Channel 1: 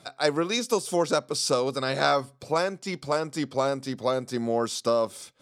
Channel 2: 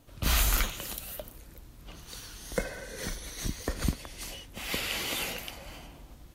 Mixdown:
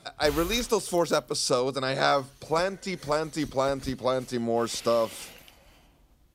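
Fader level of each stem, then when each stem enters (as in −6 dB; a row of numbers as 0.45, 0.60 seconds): −0.5, −11.5 decibels; 0.00, 0.00 seconds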